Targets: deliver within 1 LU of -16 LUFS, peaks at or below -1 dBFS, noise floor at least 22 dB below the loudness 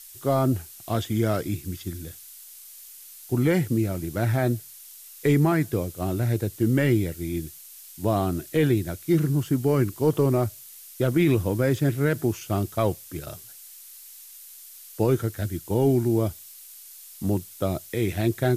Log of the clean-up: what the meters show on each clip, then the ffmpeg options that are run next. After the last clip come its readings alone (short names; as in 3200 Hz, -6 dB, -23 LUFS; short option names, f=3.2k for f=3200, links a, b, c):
noise floor -46 dBFS; noise floor target -47 dBFS; loudness -25.0 LUFS; peak -11.0 dBFS; loudness target -16.0 LUFS
-> -af "afftdn=nr=6:nf=-46"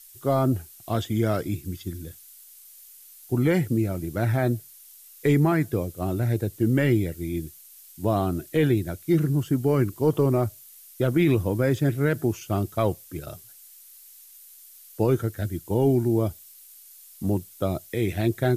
noise floor -49 dBFS; loudness -25.0 LUFS; peak -11.0 dBFS; loudness target -16.0 LUFS
-> -af "volume=9dB"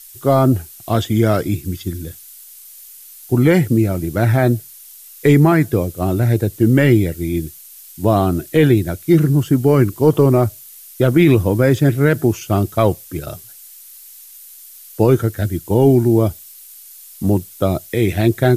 loudness -16.0 LUFS; peak -2.0 dBFS; noise floor -40 dBFS